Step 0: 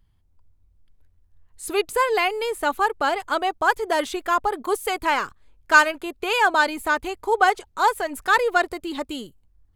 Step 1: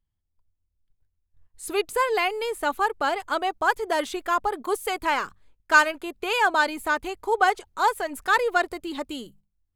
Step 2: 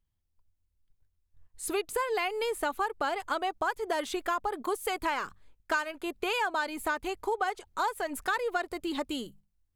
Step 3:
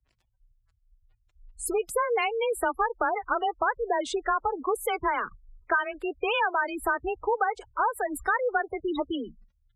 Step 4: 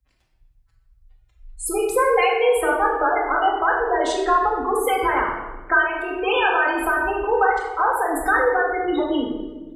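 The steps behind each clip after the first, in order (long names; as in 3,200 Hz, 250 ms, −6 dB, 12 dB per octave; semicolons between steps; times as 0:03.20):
noise gate −50 dBFS, range −14 dB; mains-hum notches 50/100/150/200 Hz; level −2.5 dB
downward compressor 6 to 1, threshold −27 dBFS, peak gain reduction 15 dB
surface crackle 140 per second −53 dBFS; gate on every frequency bin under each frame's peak −15 dB strong; frequency shifter +25 Hz; level +4.5 dB
rectangular room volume 740 cubic metres, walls mixed, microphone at 2.1 metres; level +3 dB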